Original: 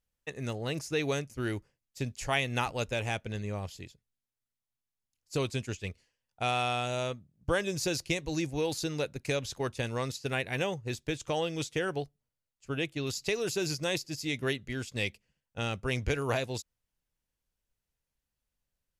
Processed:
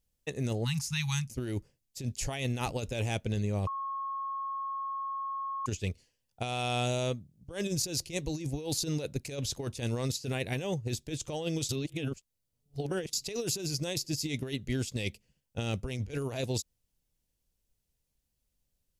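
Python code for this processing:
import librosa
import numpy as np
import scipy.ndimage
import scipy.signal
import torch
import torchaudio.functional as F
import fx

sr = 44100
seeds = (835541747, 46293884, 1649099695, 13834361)

y = fx.spec_erase(x, sr, start_s=0.65, length_s=0.64, low_hz=240.0, high_hz=810.0)
y = fx.edit(y, sr, fx.bleep(start_s=3.67, length_s=1.99, hz=1090.0, db=-20.5),
    fx.reverse_span(start_s=11.69, length_s=1.44), tone=tone)
y = fx.peak_eq(y, sr, hz=1400.0, db=-10.5, octaves=2.0)
y = fx.over_compress(y, sr, threshold_db=-36.0, ratio=-0.5)
y = y * 10.0 ** (4.0 / 20.0)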